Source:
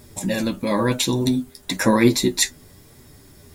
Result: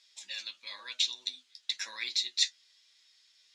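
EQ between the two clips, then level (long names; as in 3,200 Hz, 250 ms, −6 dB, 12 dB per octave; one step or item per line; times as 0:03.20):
flat-topped band-pass 5,100 Hz, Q 1
high-frequency loss of the air 250 metres
high-shelf EQ 5,300 Hz +12 dB
0.0 dB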